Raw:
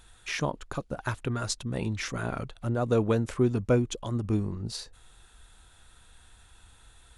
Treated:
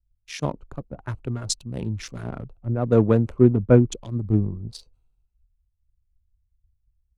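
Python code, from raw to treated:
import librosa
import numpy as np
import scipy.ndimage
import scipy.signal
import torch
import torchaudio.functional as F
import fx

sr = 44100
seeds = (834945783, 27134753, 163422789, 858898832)

y = fx.wiener(x, sr, points=25)
y = fx.low_shelf(y, sr, hz=380.0, db=7.0)
y = fx.band_widen(y, sr, depth_pct=100)
y = y * librosa.db_to_amplitude(-2.0)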